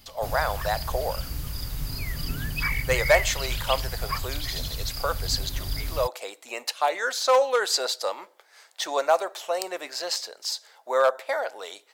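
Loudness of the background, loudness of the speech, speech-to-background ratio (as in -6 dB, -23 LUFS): -31.0 LUFS, -27.0 LUFS, 4.0 dB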